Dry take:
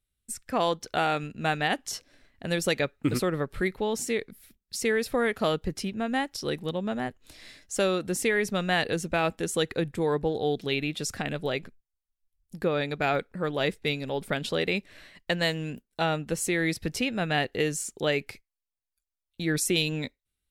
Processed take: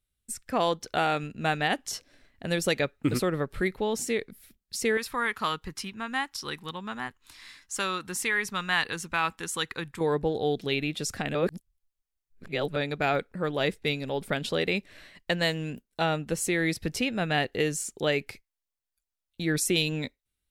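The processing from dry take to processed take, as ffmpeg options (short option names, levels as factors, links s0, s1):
-filter_complex "[0:a]asettb=1/sr,asplit=3[s0][s1][s2];[s0]atrim=end=4.974[s3];[s1]atrim=start=4.97:end=10.01,asetpts=PTS-STARTPTS,afade=t=in:d=0.004:c=qsin,afade=t=out:st=5.036:d=0.004:c=qsin,lowshelf=f=790:t=q:w=3:g=-7.5[s4];[s2]atrim=start=10.006[s5];[s3][s4]acrossfade=d=0.004:c1=hsin:c2=qsin[s6];[s6][s5]acrossfade=d=0.004:c1=qsin:c2=hsin,asplit=3[s7][s8][s9];[s7]atrim=end=11.352[s10];[s8]atrim=start=11.348:end=12.762,asetpts=PTS-STARTPTS,areverse[s11];[s9]atrim=start=12.758[s12];[s10][s11]acrossfade=d=0.004:c1=hsin:c2=hsin[s13];[s13][s12]acrossfade=d=0.004:c1=hsin:c2=hsin"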